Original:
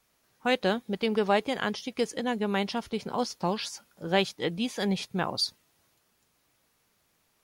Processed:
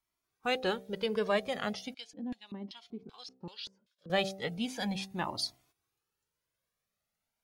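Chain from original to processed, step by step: de-hum 64.31 Hz, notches 12; gate -59 dBFS, range -12 dB; 1.94–4.1 LFO band-pass square 2.6 Hz 240–3700 Hz; cascading flanger rising 0.37 Hz

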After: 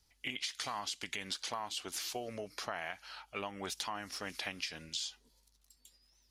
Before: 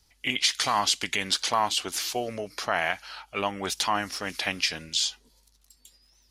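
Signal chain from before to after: compressor, threshold -28 dBFS, peak gain reduction 9.5 dB; gain -7.5 dB

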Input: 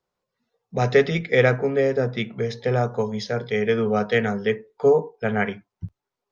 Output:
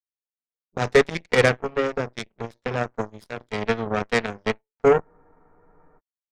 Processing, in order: added harmonics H 6 -26 dB, 7 -17 dB, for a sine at -5 dBFS; spectral freeze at 5.04, 0.94 s

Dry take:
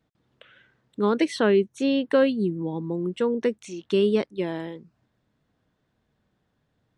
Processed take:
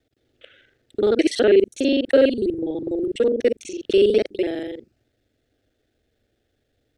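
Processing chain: local time reversal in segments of 41 ms; fixed phaser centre 420 Hz, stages 4; gain +6.5 dB

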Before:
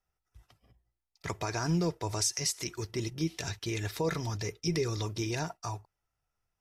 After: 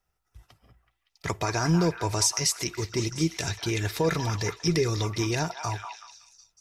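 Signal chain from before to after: delay with a stepping band-pass 0.188 s, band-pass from 1100 Hz, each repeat 0.7 oct, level -5 dB; gain +6 dB

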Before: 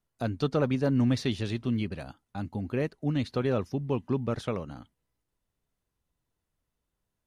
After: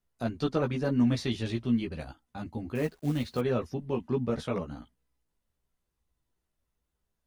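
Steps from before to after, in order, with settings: chorus voices 6, 0.91 Hz, delay 15 ms, depth 2.8 ms; 2.75–3.41 companded quantiser 6-bit; gain +2 dB

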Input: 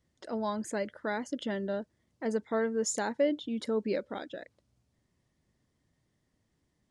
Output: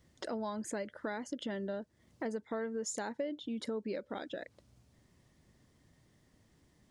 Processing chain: compressor 4:1, threshold -47 dBFS, peak gain reduction 20 dB; gain +8.5 dB

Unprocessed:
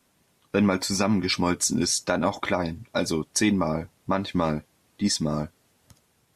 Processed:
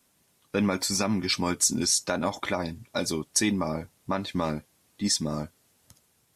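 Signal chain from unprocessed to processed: high shelf 4700 Hz +8 dB; gain -4 dB

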